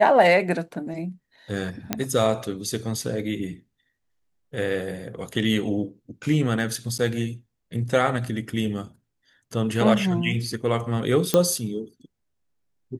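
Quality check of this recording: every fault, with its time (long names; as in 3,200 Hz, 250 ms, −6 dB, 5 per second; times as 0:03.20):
0:01.93: click −7 dBFS
0:06.98–0:06.99: drop-out 9.1 ms
0:11.34: click −5 dBFS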